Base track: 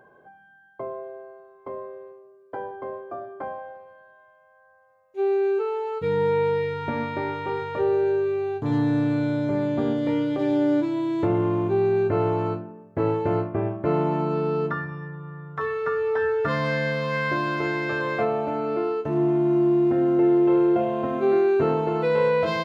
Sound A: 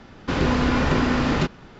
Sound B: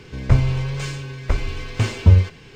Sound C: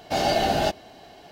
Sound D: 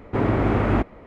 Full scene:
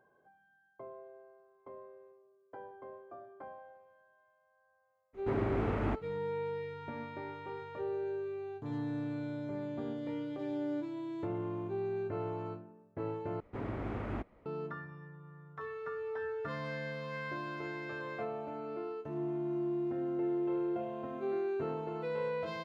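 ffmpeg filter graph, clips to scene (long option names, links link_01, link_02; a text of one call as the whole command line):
ffmpeg -i bed.wav -i cue0.wav -i cue1.wav -i cue2.wav -i cue3.wav -filter_complex "[4:a]asplit=2[link_01][link_02];[0:a]volume=-15dB,asplit=2[link_03][link_04];[link_03]atrim=end=13.404[link_05];[link_02]atrim=end=1.06,asetpts=PTS-STARTPTS,volume=-18dB[link_06];[link_04]atrim=start=14.456[link_07];[link_01]atrim=end=1.06,asetpts=PTS-STARTPTS,volume=-13dB,afade=type=in:duration=0.02,afade=type=out:start_time=1.04:duration=0.02,adelay=226233S[link_08];[link_05][link_06]acrossfade=duration=0.004:curve1=hsin:curve2=hsin[link_09];[link_09][link_07]acrossfade=duration=0.004:curve1=hsin:curve2=hsin[link_10];[link_10][link_08]amix=inputs=2:normalize=0" out.wav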